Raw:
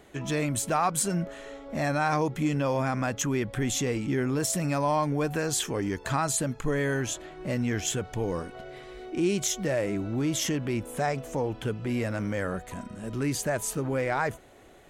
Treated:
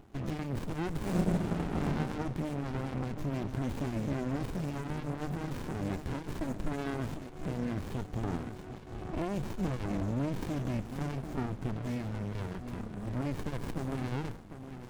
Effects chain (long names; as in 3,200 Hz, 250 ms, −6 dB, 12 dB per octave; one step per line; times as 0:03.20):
0:06.09–0:06.73: comb filter 3 ms, depth 64%
delay that swaps between a low-pass and a high-pass 747 ms, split 1,800 Hz, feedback 54%, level −12.5 dB
brickwall limiter −22 dBFS, peak gain reduction 7.5 dB
0:08.98–0:09.76: low-shelf EQ 170 Hz +7 dB
feedback echo with a high-pass in the loop 147 ms, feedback 71%, high-pass 390 Hz, level −17.5 dB
auto-filter notch saw down 5.1 Hz 500–6,700 Hz
0:00.98–0:01.80: thrown reverb, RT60 1.9 s, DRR −5 dB
0:11.81–0:12.65: parametric band 290 Hz −3.5 dB 2.6 octaves
windowed peak hold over 65 samples